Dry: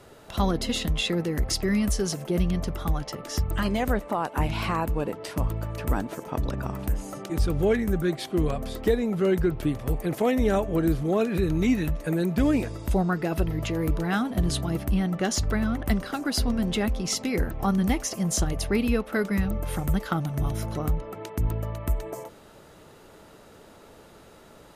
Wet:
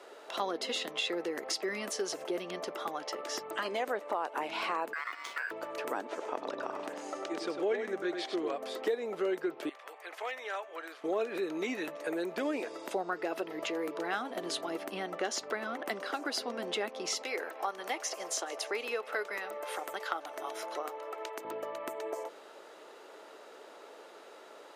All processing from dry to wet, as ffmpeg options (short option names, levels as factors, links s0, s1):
-filter_complex "[0:a]asettb=1/sr,asplit=3[s0][s1][s2];[s0]atrim=end=4.934[s3];[s1]atrim=start=4.93:end=5.51,asetpts=PTS-STARTPTS,afade=t=in:d=0.004:c=qsin,afade=t=out:st=0.576:d=0.004:c=qsin,aeval=exprs='val(0)*sin(2*PI*1600*n/s)':c=same,acompressor=threshold=0.0355:ratio=6:attack=3.2:release=140:knee=1:detection=peak,aeval=exprs='sgn(val(0))*max(abs(val(0))-0.00355,0)':c=same[s4];[s2]atrim=start=5.506[s5];[s3][s4]acrossfade=d=0.004:c1=hsin:c2=qsin[s6];[s6][s5]acrossfade=d=0.004:c1=qsin:c2=hsin,asettb=1/sr,asplit=3[s7][s8][s9];[s7]atrim=end=6.054[s10];[s8]atrim=start=6.05:end=8.56,asetpts=PTS-STARTPTS,afade=t=in:d=0.004:c=qsin,afade=t=out:st=2.506:d=0.004:c=qsin,lowpass=7200,aecho=1:1:99:0.422,atrim=end_sample=110691[s11];[s9]atrim=start=8.556[s12];[s10][s11]acrossfade=d=0.004:c1=hsin:c2=qsin[s13];[s13][s12]acrossfade=d=0.004:c1=qsin:c2=hsin,asettb=1/sr,asplit=3[s14][s15][s16];[s14]atrim=end=9.694[s17];[s15]atrim=start=9.69:end=11.04,asetpts=PTS-STARTPTS,afade=t=in:d=0.004:c=qsin,afade=t=out:st=1.346:d=0.004:c=qsin,highpass=1300,highshelf=f=4000:g=-11,asoftclip=type=hard:threshold=0.0398[s18];[s16]atrim=start=11.036[s19];[s17][s18]acrossfade=d=0.004:c1=hsin:c2=qsin[s20];[s20][s19]acrossfade=d=0.004:c1=qsin:c2=hsin,asettb=1/sr,asplit=3[s21][s22][s23];[s21]atrim=end=17.224[s24];[s22]atrim=start=17.22:end=21.45,asetpts=PTS-STARTPTS,afade=t=in:d=0.004:c=qsin,afade=t=out:st=4.226:d=0.004:c=qsin,highpass=480,aecho=1:1:152|304|456|608:0.0708|0.0411|0.0238|0.0138,atrim=end_sample=186543[s25];[s23]atrim=start=21.446[s26];[s24][s25]acrossfade=d=0.004:c1=hsin:c2=qsin[s27];[s27][s26]acrossfade=d=0.004:c1=qsin:c2=hsin,highpass=f=370:w=0.5412,highpass=f=370:w=1.3066,equalizer=f=13000:w=0.59:g=-11.5,acompressor=threshold=0.0178:ratio=2,volume=1.12"